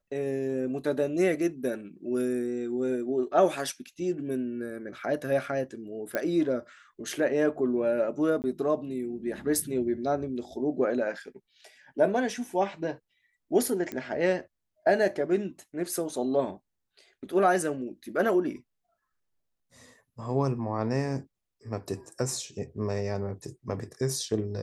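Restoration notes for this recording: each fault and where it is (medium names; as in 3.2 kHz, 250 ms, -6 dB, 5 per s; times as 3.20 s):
6.15 s: pop -15 dBFS
8.42–8.44 s: dropout 19 ms
13.92 s: pop -20 dBFS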